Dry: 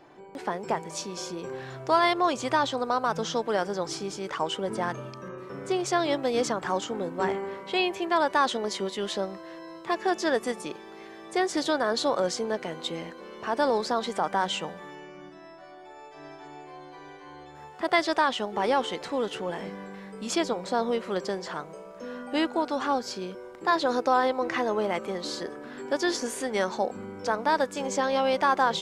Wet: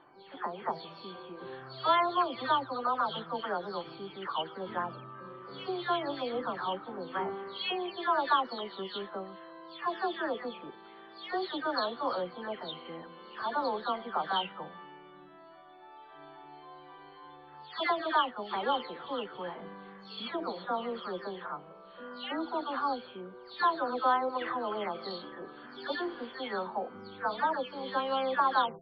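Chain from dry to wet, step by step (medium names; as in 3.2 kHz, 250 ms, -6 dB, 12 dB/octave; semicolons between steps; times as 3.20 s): delay that grows with frequency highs early, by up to 357 ms; rippled Chebyshev low-pass 4.5 kHz, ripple 9 dB; de-hum 168.8 Hz, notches 4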